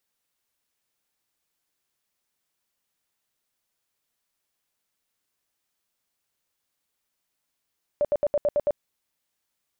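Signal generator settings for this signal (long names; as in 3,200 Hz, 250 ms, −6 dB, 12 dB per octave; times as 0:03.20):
tone bursts 586 Hz, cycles 22, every 0.11 s, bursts 7, −18.5 dBFS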